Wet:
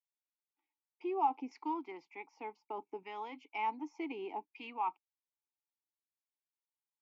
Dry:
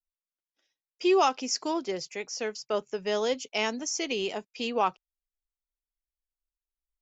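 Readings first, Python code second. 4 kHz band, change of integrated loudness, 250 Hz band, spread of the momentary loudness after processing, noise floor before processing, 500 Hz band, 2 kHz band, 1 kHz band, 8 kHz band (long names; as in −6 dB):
−23.5 dB, −10.5 dB, −10.5 dB, 14 LU, below −85 dBFS, −16.0 dB, −13.0 dB, −5.0 dB, can't be measured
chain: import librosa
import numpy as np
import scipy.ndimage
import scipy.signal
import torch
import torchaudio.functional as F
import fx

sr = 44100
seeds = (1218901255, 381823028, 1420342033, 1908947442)

p1 = fx.over_compress(x, sr, threshold_db=-29.0, ratio=-1.0)
p2 = x + F.gain(torch.from_numpy(p1), -1.0).numpy()
p3 = fx.filter_lfo_bandpass(p2, sr, shape='saw_down', hz=0.66, low_hz=640.0, high_hz=1500.0, q=1.4)
p4 = fx.vowel_filter(p3, sr, vowel='u')
y = F.gain(torch.from_numpy(p4), 4.5).numpy()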